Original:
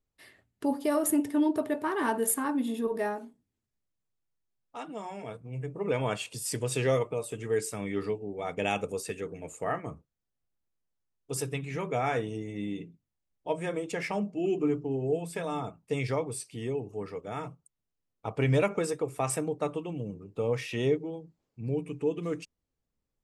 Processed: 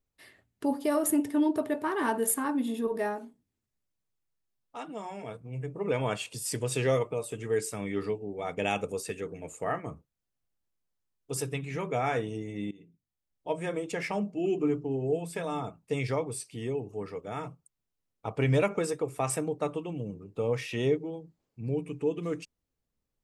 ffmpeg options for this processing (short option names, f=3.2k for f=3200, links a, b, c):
-filter_complex "[0:a]asplit=2[a][b];[a]atrim=end=12.71,asetpts=PTS-STARTPTS,afade=t=out:st=12.706:d=0.004:c=hsin:silence=0.0891251[c];[b]atrim=start=12.71,asetpts=PTS-STARTPTS,afade=t=in:d=1.11:c=qsin:silence=0.0891251[d];[c][d]concat=n=2:v=0:a=1"